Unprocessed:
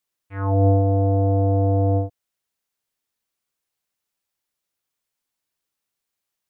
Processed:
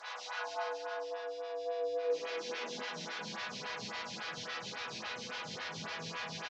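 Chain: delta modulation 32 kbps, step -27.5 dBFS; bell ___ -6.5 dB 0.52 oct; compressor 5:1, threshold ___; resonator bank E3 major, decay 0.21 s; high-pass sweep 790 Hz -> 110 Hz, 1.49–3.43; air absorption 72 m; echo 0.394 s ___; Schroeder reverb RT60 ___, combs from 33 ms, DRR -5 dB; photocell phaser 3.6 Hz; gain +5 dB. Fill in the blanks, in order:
300 Hz, -24 dBFS, -8 dB, 2.4 s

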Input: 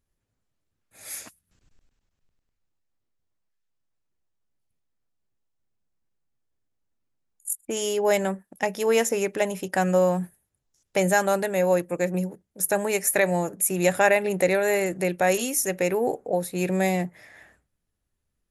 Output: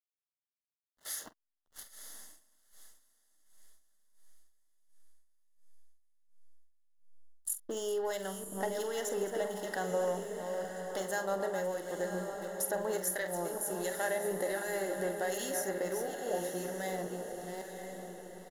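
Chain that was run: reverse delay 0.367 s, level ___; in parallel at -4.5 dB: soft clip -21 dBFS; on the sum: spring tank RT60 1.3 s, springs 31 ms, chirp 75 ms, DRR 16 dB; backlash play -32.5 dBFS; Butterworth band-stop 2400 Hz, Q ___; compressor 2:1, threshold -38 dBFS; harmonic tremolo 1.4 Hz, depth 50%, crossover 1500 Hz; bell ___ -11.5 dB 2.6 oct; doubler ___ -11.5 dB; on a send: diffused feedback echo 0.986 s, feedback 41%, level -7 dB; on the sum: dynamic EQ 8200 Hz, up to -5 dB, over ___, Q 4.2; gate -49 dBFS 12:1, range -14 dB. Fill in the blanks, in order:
-9 dB, 2.7, 88 Hz, 46 ms, -58 dBFS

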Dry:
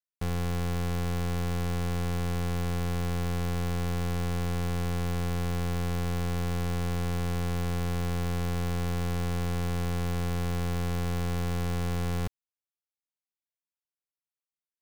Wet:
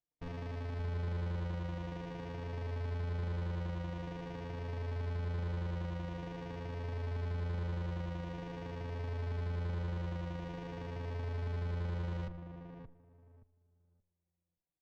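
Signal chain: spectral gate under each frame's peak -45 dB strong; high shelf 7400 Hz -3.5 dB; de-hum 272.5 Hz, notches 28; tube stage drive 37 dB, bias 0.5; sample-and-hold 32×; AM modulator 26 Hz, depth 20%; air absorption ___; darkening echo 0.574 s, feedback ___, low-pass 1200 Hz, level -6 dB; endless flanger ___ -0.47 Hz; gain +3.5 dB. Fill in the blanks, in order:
190 m, 19%, 3.8 ms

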